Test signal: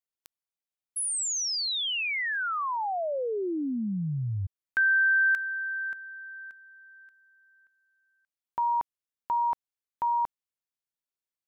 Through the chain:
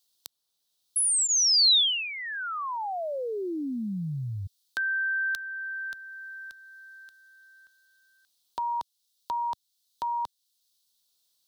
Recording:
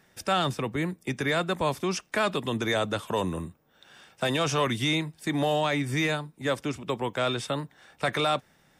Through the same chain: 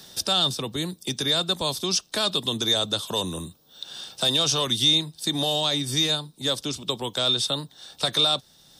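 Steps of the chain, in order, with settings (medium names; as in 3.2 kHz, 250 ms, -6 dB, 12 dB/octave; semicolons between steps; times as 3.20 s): resonant high shelf 2.9 kHz +10 dB, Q 3; band-stop 7.1 kHz, Q 16; three bands compressed up and down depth 40%; trim -1.5 dB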